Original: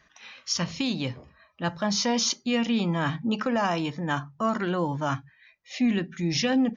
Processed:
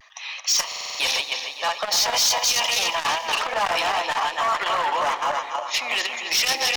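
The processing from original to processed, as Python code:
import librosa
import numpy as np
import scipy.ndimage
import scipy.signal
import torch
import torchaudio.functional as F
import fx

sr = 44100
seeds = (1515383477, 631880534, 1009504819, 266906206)

p1 = fx.reverse_delay_fb(x, sr, ms=140, feedback_pct=69, wet_db=-4)
p2 = scipy.signal.sosfilt(scipy.signal.butter(4, 750.0, 'highpass', fs=sr, output='sos'), p1)
p3 = fx.high_shelf(p2, sr, hz=5800.0, db=-5.5)
p4 = fx.hpss(p3, sr, part='percussive', gain_db=7)
p5 = fx.peak_eq(p4, sr, hz=1500.0, db=-14.5, octaves=0.33)
p6 = fx.level_steps(p5, sr, step_db=18)
p7 = p5 + (p6 * librosa.db_to_amplitude(2.0))
p8 = np.clip(p7, -10.0 ** (-23.5 / 20.0), 10.0 ** (-23.5 / 20.0))
p9 = fx.vibrato(p8, sr, rate_hz=0.52, depth_cents=31.0)
p10 = fx.rev_plate(p9, sr, seeds[0], rt60_s=3.6, hf_ratio=1.0, predelay_ms=0, drr_db=16.5)
p11 = fx.buffer_glitch(p10, sr, at_s=(0.67,), block=2048, repeats=6)
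p12 = fx.transformer_sat(p11, sr, knee_hz=990.0)
y = p12 * librosa.db_to_amplitude(7.0)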